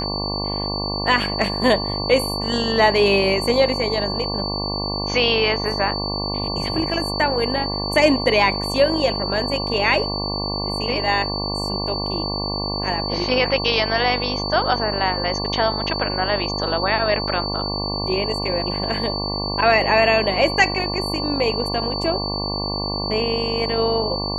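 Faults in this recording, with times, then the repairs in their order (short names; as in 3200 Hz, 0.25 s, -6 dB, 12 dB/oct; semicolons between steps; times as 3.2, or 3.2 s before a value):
buzz 50 Hz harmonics 23 -27 dBFS
tone 4500 Hz -26 dBFS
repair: de-hum 50 Hz, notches 23; notch 4500 Hz, Q 30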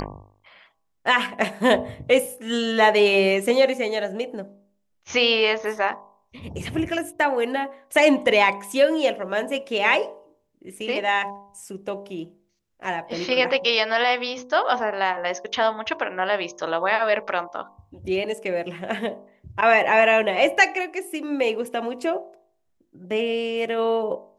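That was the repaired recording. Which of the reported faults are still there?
none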